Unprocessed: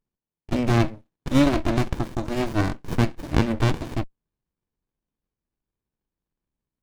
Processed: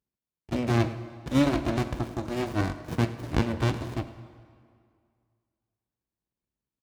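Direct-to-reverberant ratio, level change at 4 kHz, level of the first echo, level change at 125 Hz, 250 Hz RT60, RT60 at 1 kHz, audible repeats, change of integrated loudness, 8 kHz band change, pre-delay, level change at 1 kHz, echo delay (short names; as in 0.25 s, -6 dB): 10.5 dB, -4.0 dB, -19.0 dB, -4.0 dB, 2.2 s, 2.2 s, 1, -4.0 dB, -4.0 dB, 6 ms, -4.0 dB, 0.105 s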